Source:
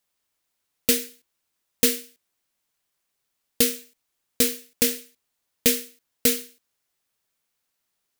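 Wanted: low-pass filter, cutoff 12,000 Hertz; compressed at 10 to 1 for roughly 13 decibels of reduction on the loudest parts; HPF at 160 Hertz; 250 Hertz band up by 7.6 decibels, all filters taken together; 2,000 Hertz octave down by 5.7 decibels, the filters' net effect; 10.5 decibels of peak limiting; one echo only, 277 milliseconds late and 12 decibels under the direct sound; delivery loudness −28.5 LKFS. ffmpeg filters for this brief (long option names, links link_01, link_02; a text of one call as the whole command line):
ffmpeg -i in.wav -af "highpass=160,lowpass=12000,equalizer=frequency=250:width_type=o:gain=8.5,equalizer=frequency=2000:width_type=o:gain=-7.5,acompressor=threshold=-27dB:ratio=10,alimiter=limit=-17dB:level=0:latency=1,aecho=1:1:277:0.251,volume=11dB" out.wav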